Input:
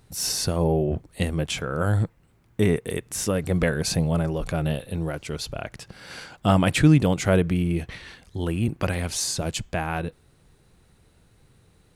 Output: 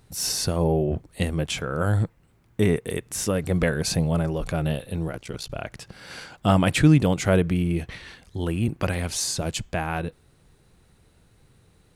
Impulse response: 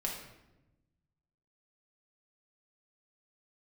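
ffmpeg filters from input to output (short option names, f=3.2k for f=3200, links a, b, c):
-filter_complex "[0:a]asplit=3[a][b][c];[a]afade=t=out:st=5.07:d=0.02[d];[b]aeval=exprs='val(0)*sin(2*PI*30*n/s)':c=same,afade=t=in:st=5.07:d=0.02,afade=t=out:st=5.48:d=0.02[e];[c]afade=t=in:st=5.48:d=0.02[f];[d][e][f]amix=inputs=3:normalize=0"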